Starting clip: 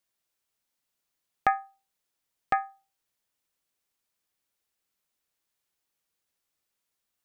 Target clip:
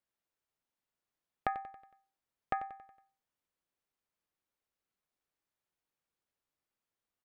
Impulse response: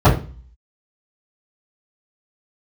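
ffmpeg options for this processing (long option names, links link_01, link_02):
-af "highshelf=frequency=2900:gain=-12,acompressor=threshold=-27dB:ratio=6,aecho=1:1:92|184|276|368|460:0.2|0.0978|0.0479|0.0235|0.0115,volume=-3dB"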